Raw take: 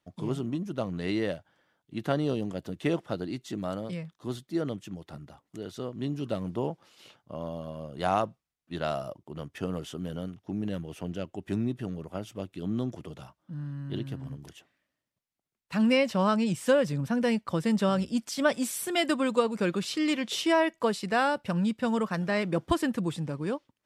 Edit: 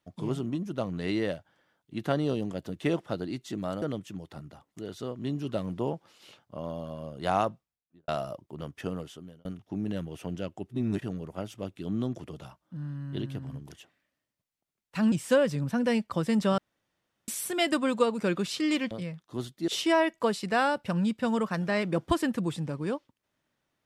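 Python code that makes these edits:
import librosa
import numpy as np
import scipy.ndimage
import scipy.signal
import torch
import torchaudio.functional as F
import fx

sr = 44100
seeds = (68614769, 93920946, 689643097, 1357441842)

y = fx.studio_fade_out(x, sr, start_s=8.26, length_s=0.59)
y = fx.edit(y, sr, fx.move(start_s=3.82, length_s=0.77, to_s=20.28),
    fx.fade_out_span(start_s=9.57, length_s=0.65),
    fx.reverse_span(start_s=11.47, length_s=0.31),
    fx.cut(start_s=15.89, length_s=0.6),
    fx.room_tone_fill(start_s=17.95, length_s=0.7), tone=tone)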